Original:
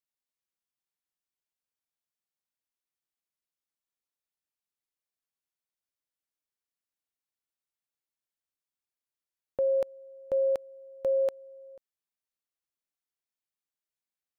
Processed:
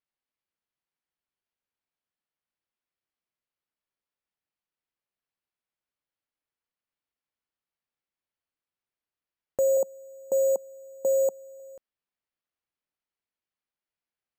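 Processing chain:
0:09.77–0:11.60: elliptic band-pass filter 190–920 Hz
bad sample-rate conversion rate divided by 6×, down filtered, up hold
level +3.5 dB

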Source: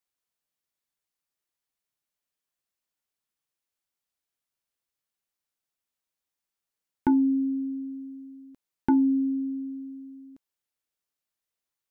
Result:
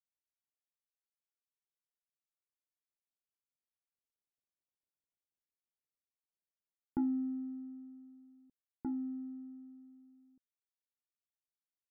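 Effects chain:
running median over 41 samples
source passing by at 0:04.84, 12 m/s, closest 9.2 metres
Gaussian smoothing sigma 6.8 samples
level −1.5 dB

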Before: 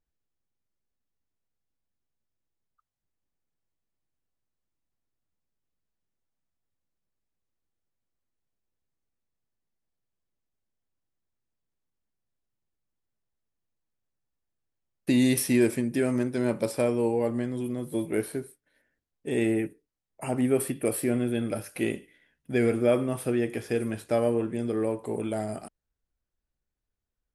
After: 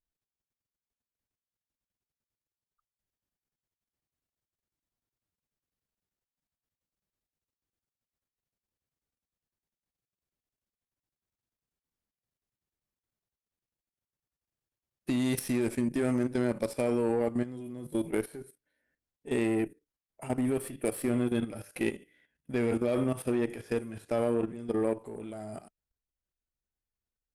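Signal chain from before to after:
harmonic generator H 4 −21 dB, 6 −19 dB, 7 −31 dB, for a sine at −11.5 dBFS
harmonic and percussive parts rebalanced harmonic +5 dB
output level in coarse steps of 13 dB
level −1.5 dB

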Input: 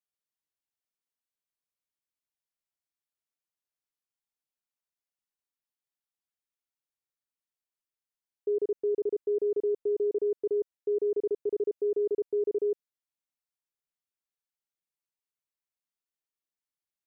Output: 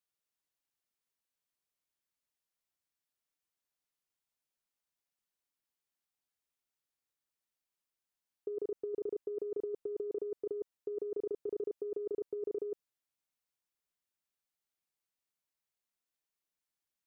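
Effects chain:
compressor whose output falls as the input rises −31 dBFS, ratio −0.5
level −4 dB

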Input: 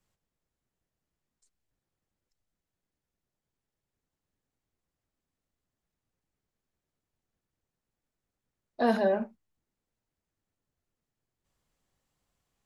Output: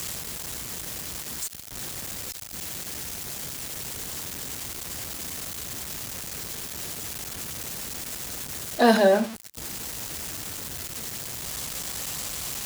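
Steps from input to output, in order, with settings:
converter with a step at zero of −39.5 dBFS
high-pass filter 44 Hz
high-shelf EQ 2,700 Hz +11.5 dB
level +6.5 dB

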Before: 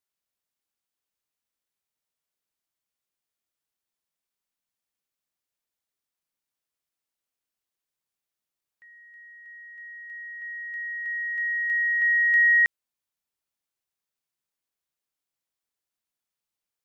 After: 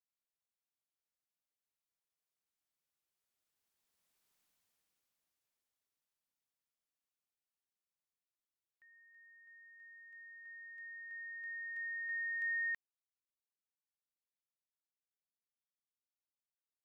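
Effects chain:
source passing by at 0:04.35, 8 m/s, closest 3.3 metres
level +7.5 dB

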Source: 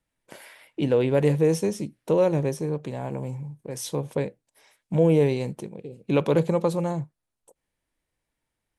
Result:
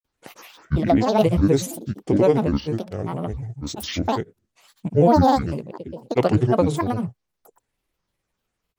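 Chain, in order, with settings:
granular cloud 100 ms, pitch spread up and down by 12 semitones
level +5 dB

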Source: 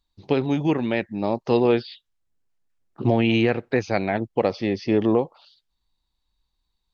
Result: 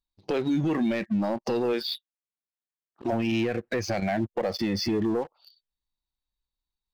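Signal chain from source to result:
0:01.72–0:03.12: high-pass filter 350 Hz → 900 Hz 6 dB per octave
0:04.00–0:04.59: noise gate −27 dBFS, range −10 dB
noise reduction from a noise print of the clip's start 15 dB
0:00.67–0:01.09: transient designer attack −9 dB, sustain +3 dB
downward compressor 6 to 1, threshold −25 dBFS, peak gain reduction 10.5 dB
leveller curve on the samples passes 2
brickwall limiter −24.5 dBFS, peak gain reduction 11 dB
level +5 dB

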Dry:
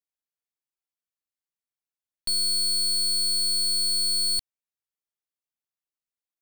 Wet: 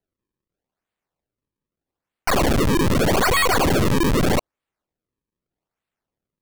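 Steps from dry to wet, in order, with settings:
sample-and-hold swept by an LFO 36×, swing 160% 0.81 Hz
level +6.5 dB

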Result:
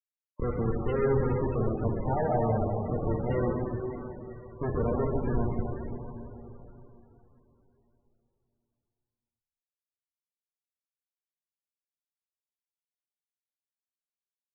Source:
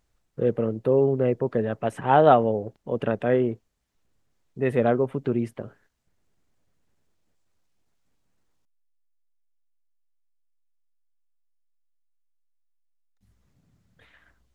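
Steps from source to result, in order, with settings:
high-pass filter 130 Hz 24 dB per octave
high-shelf EQ 2,200 Hz −8.5 dB
feedback echo with a high-pass in the loop 143 ms, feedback 82%, high-pass 550 Hz, level −21 dB
comparator with hysteresis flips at −25 dBFS
dense smooth reverb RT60 3.6 s, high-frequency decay 0.9×, pre-delay 0 ms, DRR −1.5 dB
spectral peaks only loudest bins 32

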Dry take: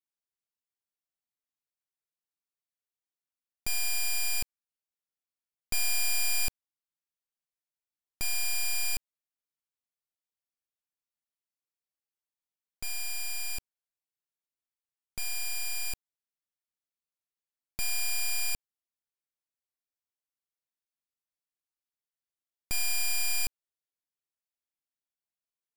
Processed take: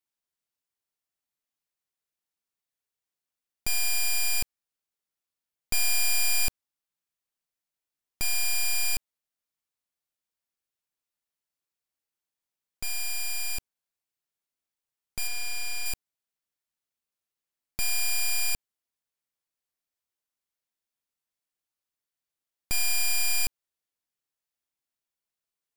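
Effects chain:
0:15.27–0:15.86: high-shelf EQ 8,800 Hz −9.5 dB
level +3.5 dB

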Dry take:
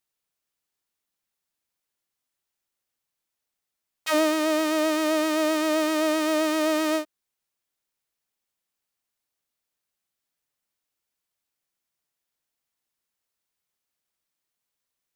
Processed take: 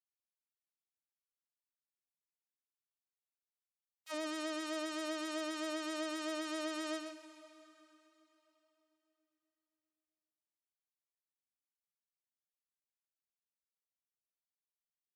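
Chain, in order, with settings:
downward expander −11 dBFS
parametric band 14,000 Hz +9 dB 2.5 octaves
gate on every frequency bin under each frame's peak −25 dB strong
brickwall limiter −30.5 dBFS, peak gain reduction 11.5 dB
single-tap delay 126 ms −7.5 dB
convolution reverb RT60 3.6 s, pre-delay 118 ms, DRR 12.5 dB
level +2.5 dB

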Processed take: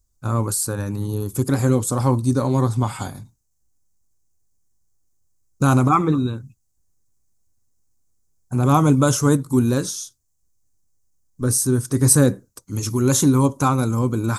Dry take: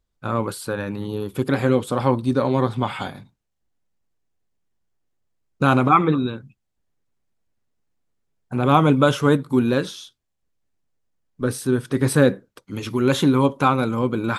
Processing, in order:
drawn EQ curve 110 Hz 0 dB, 170 Hz −8 dB, 300 Hz −7 dB, 500 Hz −12 dB, 1,100 Hz −9 dB, 1,700 Hz −14 dB, 3,300 Hz −16 dB, 6,400 Hz +8 dB, 11,000 Hz +5 dB
level +8 dB

